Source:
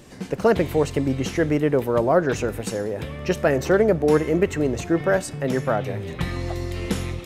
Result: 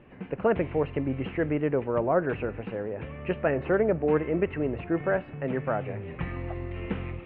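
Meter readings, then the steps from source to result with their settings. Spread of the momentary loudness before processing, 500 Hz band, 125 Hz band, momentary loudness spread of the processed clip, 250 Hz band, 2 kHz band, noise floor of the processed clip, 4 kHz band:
10 LU, -6.0 dB, -6.5 dB, 10 LU, -6.5 dB, -6.0 dB, -43 dBFS, under -10 dB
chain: elliptic low-pass 2.7 kHz, stop band 60 dB; trim -5.5 dB

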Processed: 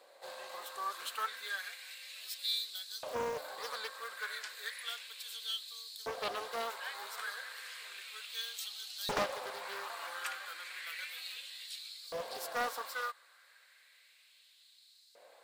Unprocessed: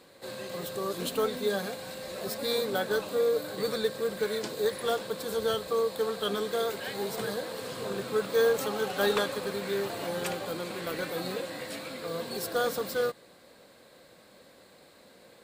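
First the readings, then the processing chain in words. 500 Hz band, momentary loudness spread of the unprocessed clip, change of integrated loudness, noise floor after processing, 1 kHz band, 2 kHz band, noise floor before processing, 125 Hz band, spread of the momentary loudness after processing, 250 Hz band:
-16.0 dB, 10 LU, -9.0 dB, -64 dBFS, -4.5 dB, -4.0 dB, -57 dBFS, -18.0 dB, 9 LU, -19.5 dB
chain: bass shelf 150 Hz -11.5 dB; LFO high-pass saw up 0.33 Hz 600–4800 Hz; loudspeaker Doppler distortion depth 0.61 ms; trim -6 dB

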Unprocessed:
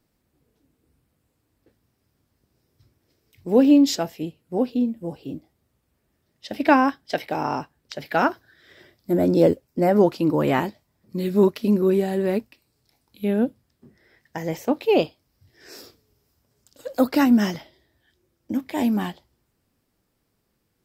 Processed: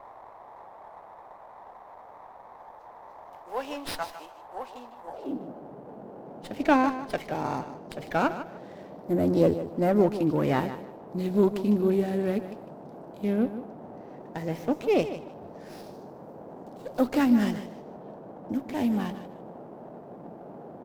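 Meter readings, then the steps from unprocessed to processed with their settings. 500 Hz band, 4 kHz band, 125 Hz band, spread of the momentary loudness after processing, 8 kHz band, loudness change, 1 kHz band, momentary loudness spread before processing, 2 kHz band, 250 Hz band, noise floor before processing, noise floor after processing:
-5.0 dB, -8.0 dB, -3.0 dB, 21 LU, no reading, -5.5 dB, -4.5 dB, 16 LU, -6.0 dB, -5.5 dB, -73 dBFS, -48 dBFS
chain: band noise 150–790 Hz -39 dBFS; high-pass sweep 1 kHz -> 80 Hz, 5.05–5.59 s; on a send: feedback delay 152 ms, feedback 23%, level -12 dB; on the sum: sliding maximum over 5 samples; trim -5.5 dB

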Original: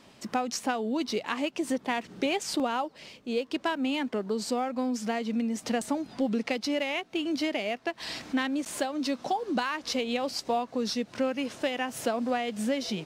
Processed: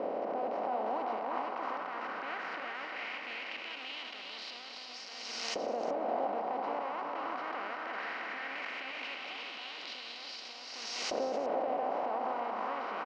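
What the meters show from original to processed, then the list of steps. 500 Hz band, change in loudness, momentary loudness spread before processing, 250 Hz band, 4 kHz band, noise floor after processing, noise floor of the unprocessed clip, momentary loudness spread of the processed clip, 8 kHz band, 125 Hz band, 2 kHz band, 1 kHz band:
-5.5 dB, -6.5 dB, 3 LU, -17.5 dB, -6.0 dB, -46 dBFS, -55 dBFS, 8 LU, -11.0 dB, under -15 dB, -4.5 dB, -2.0 dB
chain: spectral levelling over time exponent 0.2; treble shelf 10 kHz +8 dB; band-stop 1.7 kHz, Q 8.8; peak limiter -11 dBFS, peak gain reduction 9.5 dB; LFO band-pass saw up 0.18 Hz 540–6600 Hz; distance through air 220 m; on a send: delay 350 ms -4.5 dB; on the sum: swell ahead of each attack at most 26 dB/s; trim -7 dB

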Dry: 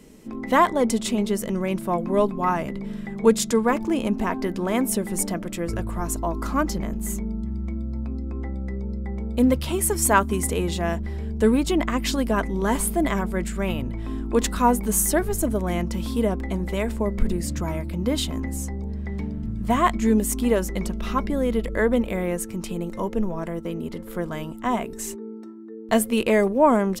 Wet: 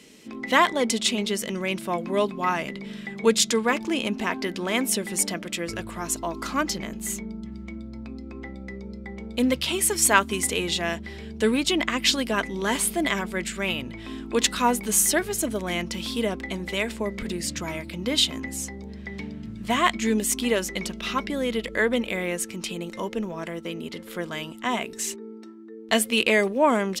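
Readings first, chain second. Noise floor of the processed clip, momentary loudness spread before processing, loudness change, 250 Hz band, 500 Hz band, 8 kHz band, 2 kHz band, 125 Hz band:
-40 dBFS, 11 LU, -0.5 dB, -4.5 dB, -3.0 dB, +2.5 dB, +4.5 dB, -8.5 dB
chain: frequency weighting D; trim -2.5 dB

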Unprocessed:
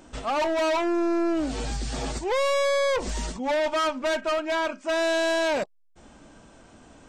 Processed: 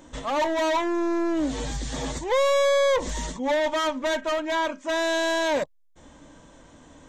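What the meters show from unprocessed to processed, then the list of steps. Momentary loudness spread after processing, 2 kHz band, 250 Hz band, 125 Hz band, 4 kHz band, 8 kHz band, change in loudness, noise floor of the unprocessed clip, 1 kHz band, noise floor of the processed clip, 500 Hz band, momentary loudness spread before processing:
11 LU, +0.5 dB, +0.5 dB, -0.5 dB, +1.0 dB, +2.0 dB, +1.0 dB, -54 dBFS, +1.0 dB, -53 dBFS, +1.0 dB, 8 LU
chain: rippled EQ curve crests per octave 1.1, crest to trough 7 dB

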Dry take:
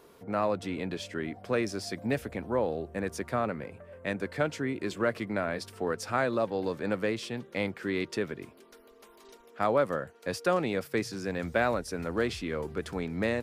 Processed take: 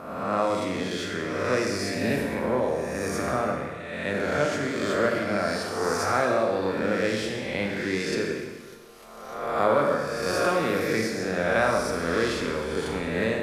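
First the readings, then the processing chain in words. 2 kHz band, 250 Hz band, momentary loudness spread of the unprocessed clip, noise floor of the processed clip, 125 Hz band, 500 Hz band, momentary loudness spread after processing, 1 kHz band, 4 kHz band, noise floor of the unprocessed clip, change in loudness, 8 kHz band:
+7.0 dB, +4.5 dB, 7 LU, -41 dBFS, +4.0 dB, +5.5 dB, 7 LU, +6.5 dB, +7.5 dB, -57 dBFS, +5.5 dB, +8.5 dB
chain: reverse spectral sustain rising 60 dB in 1.29 s; Schroeder reverb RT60 1.3 s, combs from 28 ms, DRR 1.5 dB; MP2 192 kbps 48 kHz

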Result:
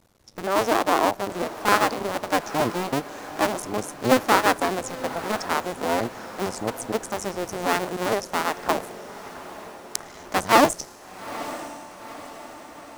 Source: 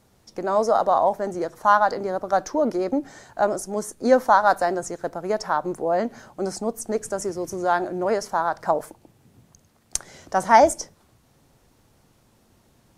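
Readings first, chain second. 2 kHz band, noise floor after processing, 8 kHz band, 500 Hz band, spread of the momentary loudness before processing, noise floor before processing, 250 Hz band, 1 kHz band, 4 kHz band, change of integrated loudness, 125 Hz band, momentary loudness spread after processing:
+2.5 dB, -44 dBFS, +1.0 dB, -3.0 dB, 13 LU, -61 dBFS, +1.0 dB, -2.5 dB, +8.5 dB, -1.5 dB, +3.0 dB, 19 LU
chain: cycle switcher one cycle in 2, muted; echo that smears into a reverb 895 ms, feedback 55%, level -14 dB; trim +1 dB

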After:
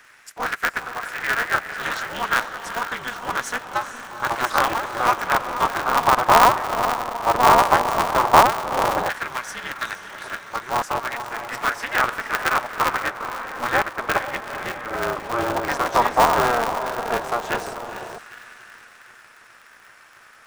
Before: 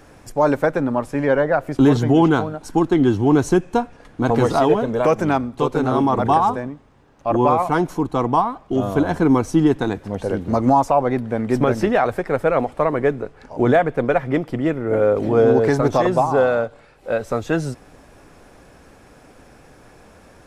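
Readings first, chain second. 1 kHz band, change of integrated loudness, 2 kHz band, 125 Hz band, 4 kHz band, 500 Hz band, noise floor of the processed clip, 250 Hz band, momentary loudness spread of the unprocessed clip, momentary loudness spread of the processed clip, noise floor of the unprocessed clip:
+2.5 dB, -2.5 dB, +6.0 dB, -14.0 dB, +7.5 dB, -8.0 dB, -49 dBFS, -15.5 dB, 8 LU, 14 LU, -49 dBFS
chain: echo that smears into a reverb 456 ms, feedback 51%, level -9 dB; LFO high-pass saw down 0.11 Hz 790–1700 Hz; polarity switched at an audio rate 120 Hz; trim -1 dB

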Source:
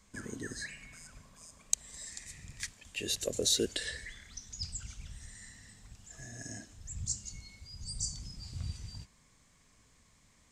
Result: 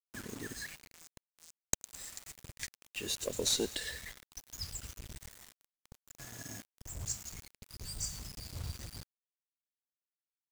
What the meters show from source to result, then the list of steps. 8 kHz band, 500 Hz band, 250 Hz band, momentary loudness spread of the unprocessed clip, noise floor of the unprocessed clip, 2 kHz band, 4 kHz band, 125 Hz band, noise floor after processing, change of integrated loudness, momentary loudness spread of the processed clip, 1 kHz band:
-2.5 dB, -2.5 dB, -2.5 dB, 20 LU, -66 dBFS, -2.0 dB, -2.0 dB, -2.5 dB, under -85 dBFS, -2.0 dB, 19 LU, +4.5 dB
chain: feedback echo behind a high-pass 107 ms, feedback 59%, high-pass 2.4 kHz, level -17.5 dB; valve stage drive 14 dB, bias 0.75; word length cut 8-bit, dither none; trim +2 dB

